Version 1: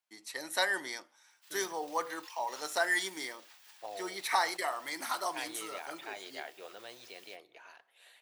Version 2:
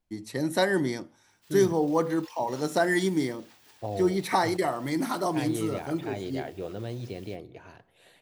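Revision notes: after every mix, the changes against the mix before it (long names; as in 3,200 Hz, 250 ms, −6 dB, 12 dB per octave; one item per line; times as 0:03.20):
master: remove high-pass filter 1,000 Hz 12 dB per octave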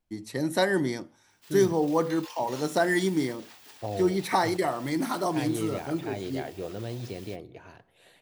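background +6.5 dB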